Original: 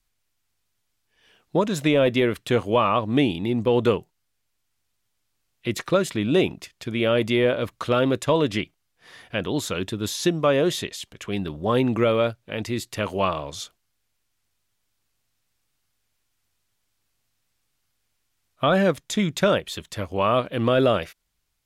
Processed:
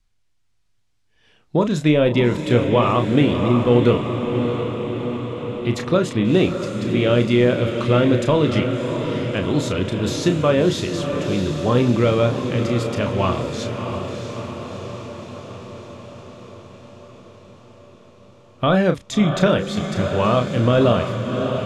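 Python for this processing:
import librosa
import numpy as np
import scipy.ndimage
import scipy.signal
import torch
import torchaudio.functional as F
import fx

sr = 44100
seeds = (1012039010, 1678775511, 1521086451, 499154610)

y = scipy.signal.sosfilt(scipy.signal.butter(2, 7700.0, 'lowpass', fs=sr, output='sos'), x)
y = fx.low_shelf(y, sr, hz=230.0, db=9.0)
y = fx.doubler(y, sr, ms=33.0, db=-8.0)
y = fx.echo_diffused(y, sr, ms=658, feedback_pct=67, wet_db=-7.0)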